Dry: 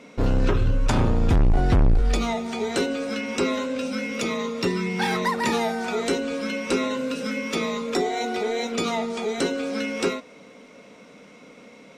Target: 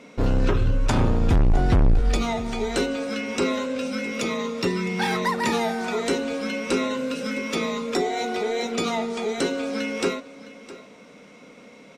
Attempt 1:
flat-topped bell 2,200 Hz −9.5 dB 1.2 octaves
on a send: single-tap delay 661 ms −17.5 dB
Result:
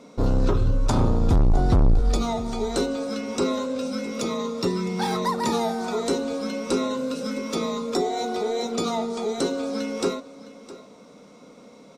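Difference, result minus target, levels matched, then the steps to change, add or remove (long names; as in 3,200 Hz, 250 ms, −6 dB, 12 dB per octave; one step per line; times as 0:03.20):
2,000 Hz band −8.0 dB
remove: flat-topped bell 2,200 Hz −9.5 dB 1.2 octaves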